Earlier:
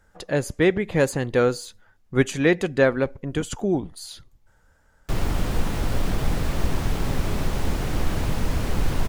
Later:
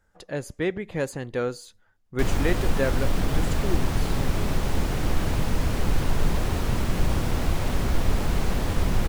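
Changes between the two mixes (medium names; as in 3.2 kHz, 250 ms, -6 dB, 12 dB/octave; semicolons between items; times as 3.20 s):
speech -7.5 dB; background: entry -2.90 s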